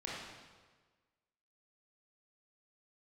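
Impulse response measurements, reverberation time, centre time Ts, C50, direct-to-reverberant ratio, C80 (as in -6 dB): 1.4 s, 93 ms, -2.0 dB, -6.0 dB, 1.0 dB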